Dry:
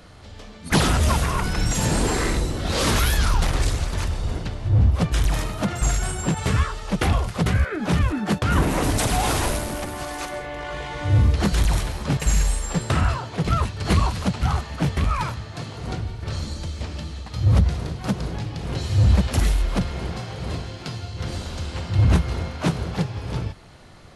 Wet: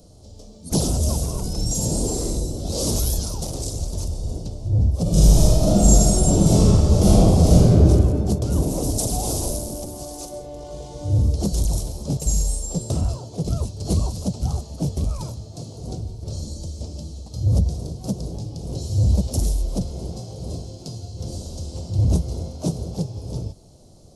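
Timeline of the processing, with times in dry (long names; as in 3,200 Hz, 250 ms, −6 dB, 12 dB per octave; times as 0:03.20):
0:03.19–0:03.76: high-pass filter 120 Hz 6 dB per octave
0:05.02–0:07.78: thrown reverb, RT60 2.5 s, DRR −11 dB
whole clip: drawn EQ curve 620 Hz 0 dB, 1,800 Hz −30 dB, 5,500 Hz +4 dB; level −1.5 dB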